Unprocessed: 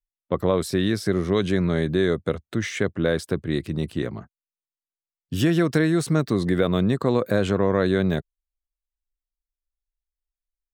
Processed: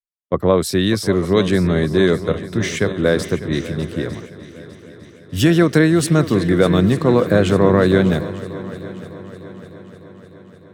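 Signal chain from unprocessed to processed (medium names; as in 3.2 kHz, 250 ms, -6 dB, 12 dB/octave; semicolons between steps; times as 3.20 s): multi-head delay 301 ms, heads second and third, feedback 70%, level -13 dB; three bands expanded up and down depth 70%; trim +6 dB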